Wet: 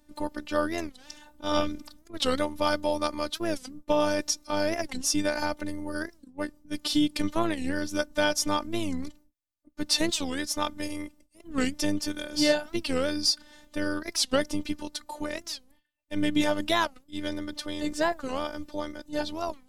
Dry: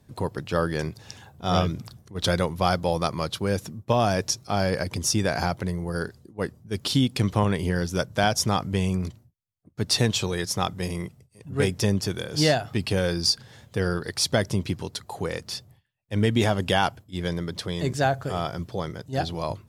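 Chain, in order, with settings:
phases set to zero 298 Hz
wow of a warped record 45 rpm, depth 250 cents

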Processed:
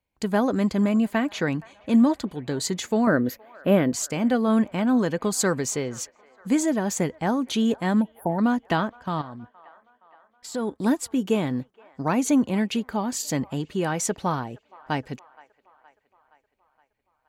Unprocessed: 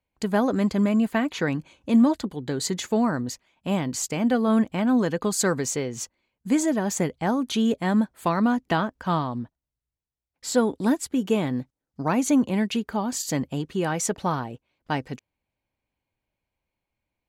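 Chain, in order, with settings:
0:03.07–0:03.93: drawn EQ curve 110 Hz 0 dB, 570 Hz +12 dB, 880 Hz −4 dB, 1,500 Hz +9 dB, 8,500 Hz −13 dB, 12,000 Hz +11 dB
0:08.02–0:08.39: time-frequency box erased 970–9,300 Hz
0:08.99–0:10.80: output level in coarse steps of 13 dB
delay with a band-pass on its return 469 ms, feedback 57%, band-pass 1,200 Hz, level −21.5 dB

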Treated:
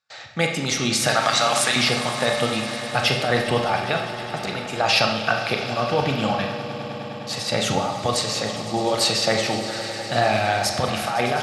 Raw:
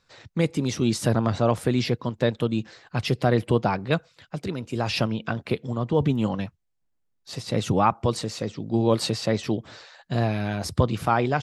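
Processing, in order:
0:01.08–0:01.76: meter weighting curve ITU-R 468
noise gate with hold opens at −47 dBFS
high-pass filter 90 Hz
low shelf with overshoot 530 Hz −11 dB, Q 1.5
compressor whose output falls as the input rises −27 dBFS, ratio −1
hard clipping −11.5 dBFS, distortion −57 dB
Butterworth band-reject 1,000 Hz, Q 6.1
echo that builds up and dies away 102 ms, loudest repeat 5, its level −17.5 dB
convolution reverb RT60 0.75 s, pre-delay 29 ms, DRR 3 dB
level +7 dB

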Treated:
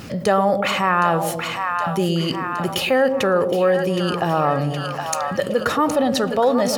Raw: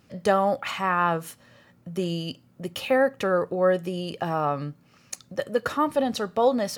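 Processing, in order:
on a send: echo with a time of its own for lows and highs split 680 Hz, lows 112 ms, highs 767 ms, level −9.5 dB
on the sum: envelope flattener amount 50%
level +2 dB

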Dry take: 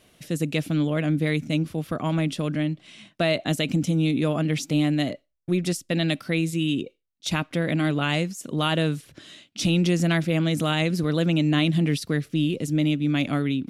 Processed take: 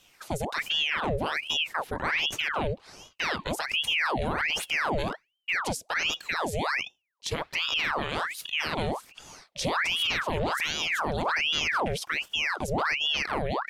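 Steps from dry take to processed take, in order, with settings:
brickwall limiter −19 dBFS, peak gain reduction 7.5 dB
ring modulator whose carrier an LFO sweeps 1,700 Hz, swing 85%, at 1.3 Hz
level +1 dB

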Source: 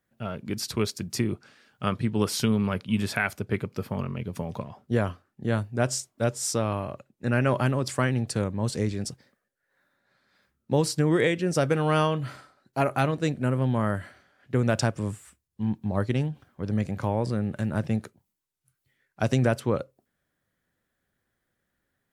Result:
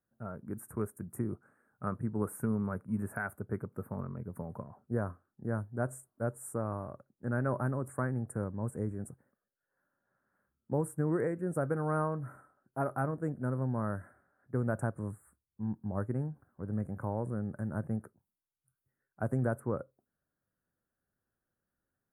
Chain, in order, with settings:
elliptic band-stop filter 1,500–9,400 Hz, stop band 80 dB
level −8 dB

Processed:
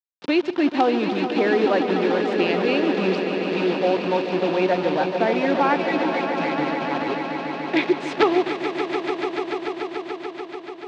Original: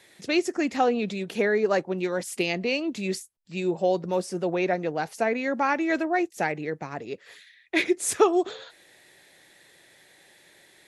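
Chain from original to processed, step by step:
gain on a spectral selection 0:05.78–0:06.90, 310–1,900 Hz −16 dB
in parallel at +2 dB: downward compressor 5 to 1, threshold −37 dBFS, peak gain reduction 20.5 dB
on the sum: bit reduction 5 bits
wrap-around overflow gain 9.5 dB
loudspeaker in its box 150–3,900 Hz, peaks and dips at 290 Hz +6 dB, 930 Hz +5 dB, 2,100 Hz −3 dB
on a send: echo that builds up and dies away 145 ms, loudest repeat 5, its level −10.5 dB

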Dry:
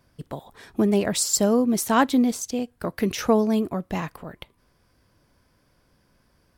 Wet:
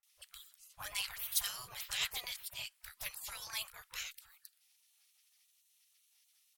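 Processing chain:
gate on every frequency bin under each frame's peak −25 dB weak
guitar amp tone stack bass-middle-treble 10-0-10
multiband delay without the direct sound lows, highs 30 ms, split 1,400 Hz
level +5.5 dB

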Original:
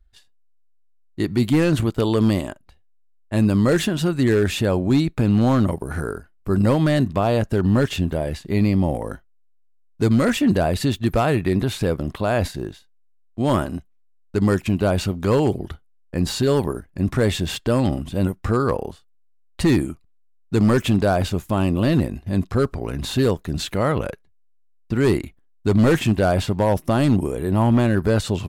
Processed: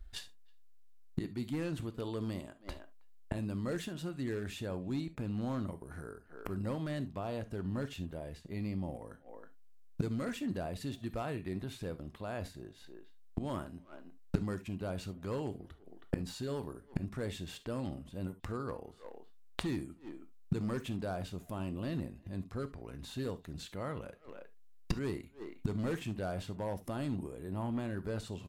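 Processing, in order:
0:26.80–0:27.92: notch filter 5,700 Hz, Q 6.8
far-end echo of a speakerphone 320 ms, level −29 dB
gate with flip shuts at −27 dBFS, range −27 dB
reverb whose tail is shaped and stops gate 90 ms flat, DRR 11.5 dB
level +7.5 dB

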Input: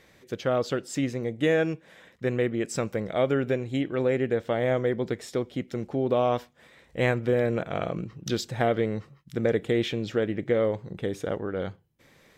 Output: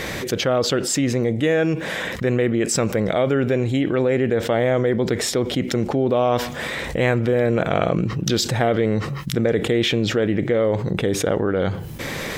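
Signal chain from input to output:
envelope flattener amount 70%
level +3 dB

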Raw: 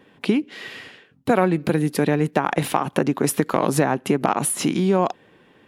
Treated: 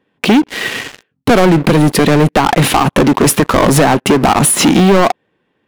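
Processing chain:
high-shelf EQ 7,600 Hz −6.5 dB
leveller curve on the samples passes 5

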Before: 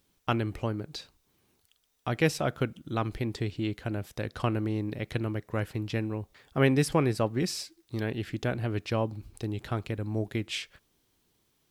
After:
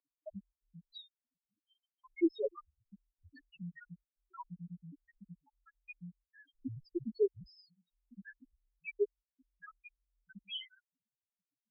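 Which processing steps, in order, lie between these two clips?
spectral peaks only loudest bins 1
single-sideband voice off tune −150 Hz 540–3,600 Hz
level +11.5 dB

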